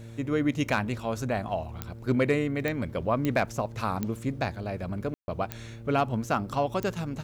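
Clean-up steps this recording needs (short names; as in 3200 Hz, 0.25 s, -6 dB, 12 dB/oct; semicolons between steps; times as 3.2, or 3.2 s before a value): clip repair -14.5 dBFS; de-click; de-hum 114.3 Hz, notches 5; room tone fill 5.14–5.28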